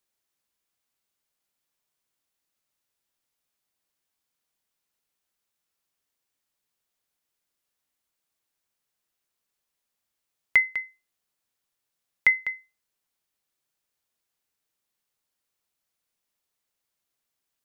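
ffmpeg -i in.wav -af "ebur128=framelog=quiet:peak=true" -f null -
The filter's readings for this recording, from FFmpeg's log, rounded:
Integrated loudness:
  I:         -24.1 LUFS
  Threshold: -35.4 LUFS
Loudness range:
  LRA:         3.0 LU
  Threshold: -50.3 LUFS
  LRA low:   -31.1 LUFS
  LRA high:  -28.1 LUFS
True peak:
  Peak:       -8.8 dBFS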